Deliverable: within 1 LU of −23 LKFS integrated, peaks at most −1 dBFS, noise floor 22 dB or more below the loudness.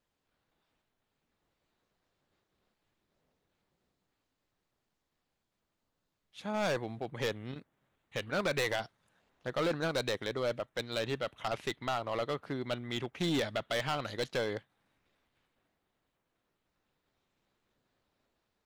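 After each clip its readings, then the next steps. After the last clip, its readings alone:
share of clipped samples 1.3%; peaks flattened at −27.0 dBFS; integrated loudness −35.0 LKFS; sample peak −27.0 dBFS; target loudness −23.0 LKFS
→ clipped peaks rebuilt −27 dBFS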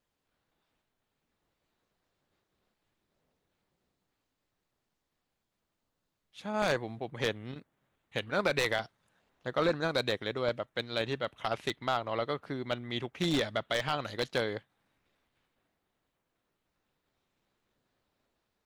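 share of clipped samples 0.0%; integrated loudness −33.0 LKFS; sample peak −18.0 dBFS; target loudness −23.0 LKFS
→ level +10 dB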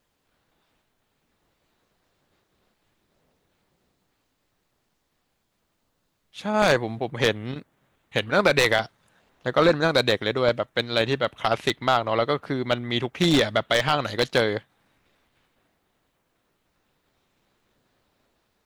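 integrated loudness −23.0 LKFS; sample peak −8.0 dBFS; background noise floor −73 dBFS

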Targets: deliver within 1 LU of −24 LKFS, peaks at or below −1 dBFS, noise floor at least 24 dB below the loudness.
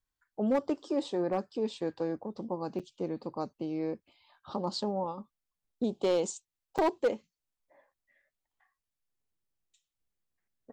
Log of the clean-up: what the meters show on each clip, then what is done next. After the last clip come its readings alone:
share of clipped samples 0.4%; peaks flattened at −21.0 dBFS; number of dropouts 2; longest dropout 6.3 ms; integrated loudness −33.5 LKFS; sample peak −21.0 dBFS; target loudness −24.0 LKFS
→ clipped peaks rebuilt −21 dBFS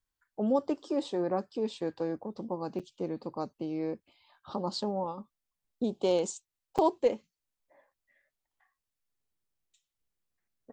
share of clipped samples 0.0%; number of dropouts 2; longest dropout 6.3 ms
→ repair the gap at 0:02.79/0:06.78, 6.3 ms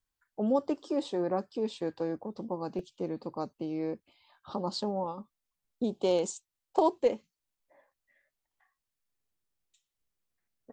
number of dropouts 0; integrated loudness −33.0 LKFS; sample peak −13.0 dBFS; target loudness −24.0 LKFS
→ level +9 dB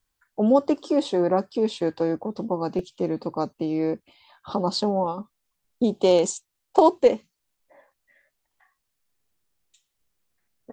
integrated loudness −24.0 LKFS; sample peak −4.0 dBFS; background noise floor −79 dBFS

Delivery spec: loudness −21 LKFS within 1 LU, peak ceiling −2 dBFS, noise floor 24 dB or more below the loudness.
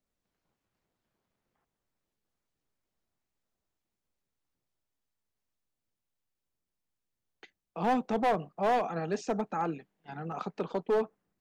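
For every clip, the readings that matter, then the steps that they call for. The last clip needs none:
share of clipped samples 0.9%; peaks flattened at −22.5 dBFS; number of dropouts 1; longest dropout 2.0 ms; integrated loudness −31.5 LKFS; sample peak −22.5 dBFS; target loudness −21.0 LKFS
→ clipped peaks rebuilt −22.5 dBFS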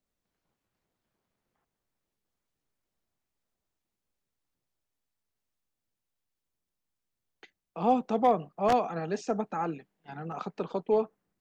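share of clipped samples 0.0%; number of dropouts 1; longest dropout 2.0 ms
→ repair the gap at 0:10.32, 2 ms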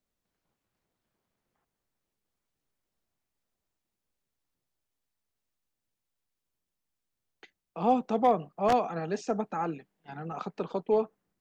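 number of dropouts 0; integrated loudness −29.5 LKFS; sample peak −13.5 dBFS; target loudness −21.0 LKFS
→ level +8.5 dB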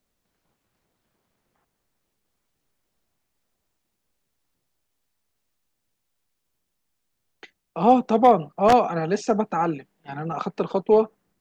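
integrated loudness −21.0 LKFS; sample peak −5.0 dBFS; background noise floor −77 dBFS

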